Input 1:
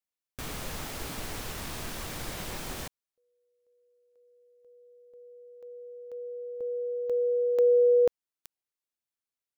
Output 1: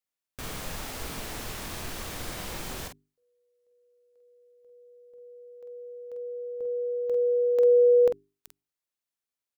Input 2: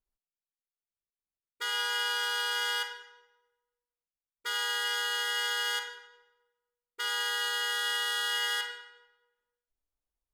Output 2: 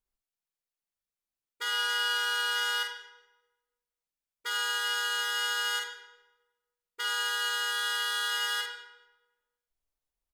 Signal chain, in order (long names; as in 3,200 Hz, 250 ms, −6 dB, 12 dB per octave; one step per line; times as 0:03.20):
mains-hum notches 50/100/150/200/250/300/350/400 Hz
double-tracking delay 47 ms −6 dB